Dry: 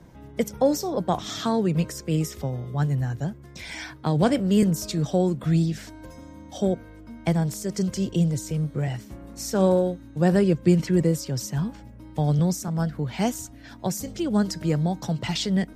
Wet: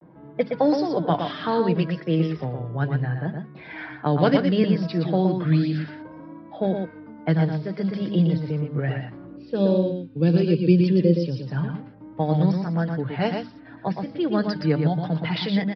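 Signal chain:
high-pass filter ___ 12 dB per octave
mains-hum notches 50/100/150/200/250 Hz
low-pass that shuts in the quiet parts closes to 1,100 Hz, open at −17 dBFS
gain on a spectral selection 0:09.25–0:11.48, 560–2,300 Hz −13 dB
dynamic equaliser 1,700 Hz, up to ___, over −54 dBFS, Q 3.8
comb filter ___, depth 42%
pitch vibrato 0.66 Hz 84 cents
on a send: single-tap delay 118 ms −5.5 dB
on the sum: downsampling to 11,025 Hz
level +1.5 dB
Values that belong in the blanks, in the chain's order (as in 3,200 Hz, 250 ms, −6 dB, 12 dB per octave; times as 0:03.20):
150 Hz, +5 dB, 6.5 ms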